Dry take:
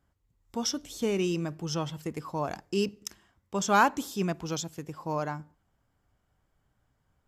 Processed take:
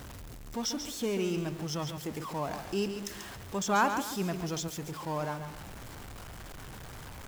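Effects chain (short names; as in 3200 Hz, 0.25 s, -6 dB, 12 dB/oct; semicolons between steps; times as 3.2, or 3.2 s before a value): zero-crossing step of -34 dBFS; lo-fi delay 0.139 s, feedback 35%, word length 8-bit, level -8 dB; gain -5 dB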